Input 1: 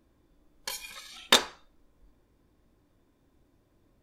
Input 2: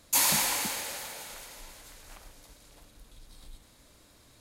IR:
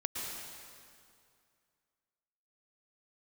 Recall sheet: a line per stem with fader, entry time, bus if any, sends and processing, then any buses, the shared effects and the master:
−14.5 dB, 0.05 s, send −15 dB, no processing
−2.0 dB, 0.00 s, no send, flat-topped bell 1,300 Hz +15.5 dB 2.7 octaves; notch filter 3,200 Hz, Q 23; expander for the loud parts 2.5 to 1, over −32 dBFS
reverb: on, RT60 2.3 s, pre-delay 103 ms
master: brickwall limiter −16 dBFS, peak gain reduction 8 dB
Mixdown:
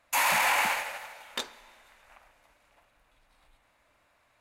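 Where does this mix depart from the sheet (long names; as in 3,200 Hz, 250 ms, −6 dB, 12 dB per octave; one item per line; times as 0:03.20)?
stem 1: send −15 dB → −22.5 dB
stem 2 −2.0 dB → +8.0 dB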